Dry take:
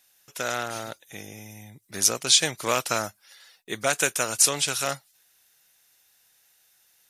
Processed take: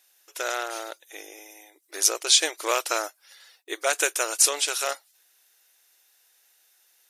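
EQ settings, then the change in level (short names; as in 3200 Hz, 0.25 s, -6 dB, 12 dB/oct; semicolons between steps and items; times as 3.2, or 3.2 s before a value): brick-wall FIR high-pass 300 Hz; 0.0 dB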